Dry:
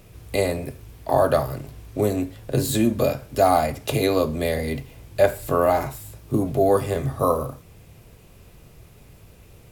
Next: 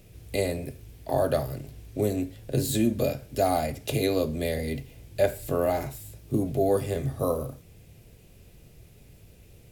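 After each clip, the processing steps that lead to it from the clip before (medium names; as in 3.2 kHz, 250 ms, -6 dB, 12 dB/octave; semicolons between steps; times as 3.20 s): peaking EQ 1.1 kHz -10 dB 0.97 oct; trim -3.5 dB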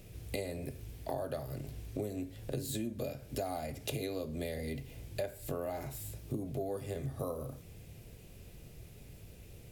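compression 6:1, threshold -35 dBFS, peak gain reduction 16.5 dB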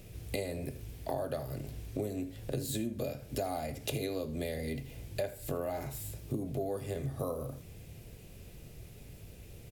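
delay 80 ms -18.5 dB; trim +2 dB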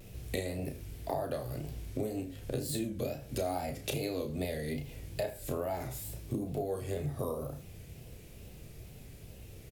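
wow and flutter 100 cents; doubling 33 ms -7 dB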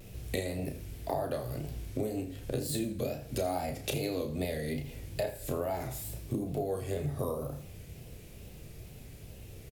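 feedback delay 83 ms, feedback 45%, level -17 dB; trim +1.5 dB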